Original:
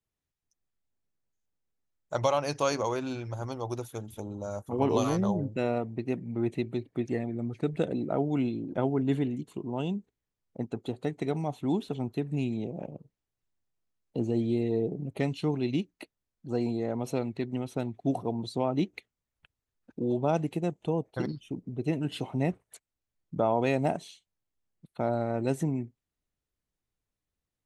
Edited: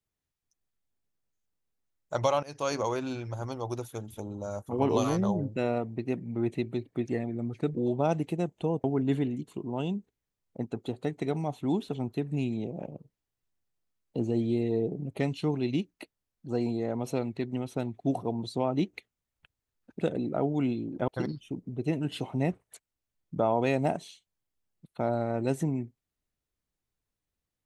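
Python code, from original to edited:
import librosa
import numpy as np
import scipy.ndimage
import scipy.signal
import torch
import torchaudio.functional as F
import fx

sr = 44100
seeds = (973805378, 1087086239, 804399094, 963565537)

y = fx.edit(x, sr, fx.fade_in_from(start_s=2.43, length_s=0.36, floor_db=-19.0),
    fx.swap(start_s=7.75, length_s=1.09, other_s=19.99, other_length_s=1.09), tone=tone)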